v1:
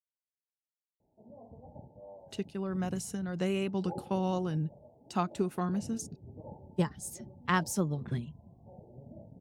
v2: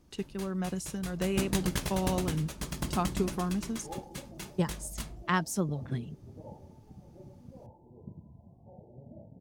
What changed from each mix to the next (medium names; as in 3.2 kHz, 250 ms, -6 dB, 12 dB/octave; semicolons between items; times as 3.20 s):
speech: entry -2.20 s; first sound: unmuted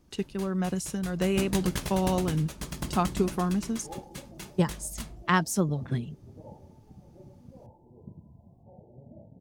speech +4.5 dB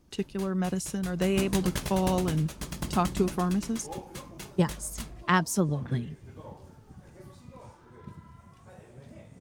second sound: remove rippled Chebyshev low-pass 890 Hz, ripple 3 dB